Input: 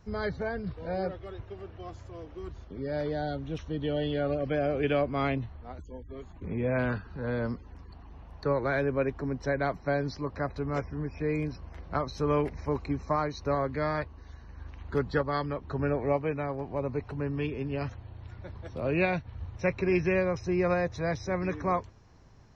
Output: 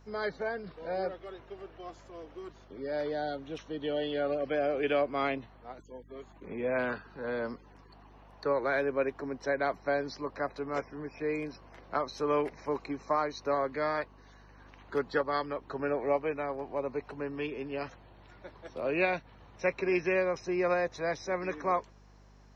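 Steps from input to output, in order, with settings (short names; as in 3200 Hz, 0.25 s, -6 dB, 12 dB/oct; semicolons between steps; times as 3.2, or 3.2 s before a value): HPF 330 Hz 12 dB/oct; hum 50 Hz, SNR 24 dB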